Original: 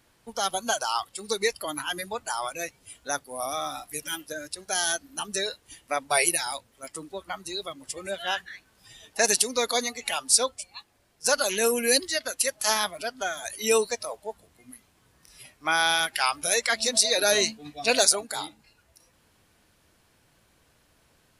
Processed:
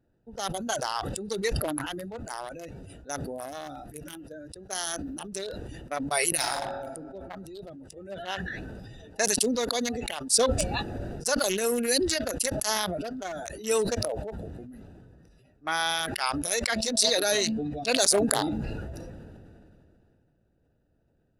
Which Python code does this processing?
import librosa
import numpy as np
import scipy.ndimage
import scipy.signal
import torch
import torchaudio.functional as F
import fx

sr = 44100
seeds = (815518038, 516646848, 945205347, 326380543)

y = fx.reverb_throw(x, sr, start_s=6.36, length_s=0.52, rt60_s=1.5, drr_db=-4.5)
y = fx.wiener(y, sr, points=41)
y = fx.notch(y, sr, hz=2400.0, q=15.0)
y = fx.sustainer(y, sr, db_per_s=22.0)
y = F.gain(torch.from_numpy(y), -3.0).numpy()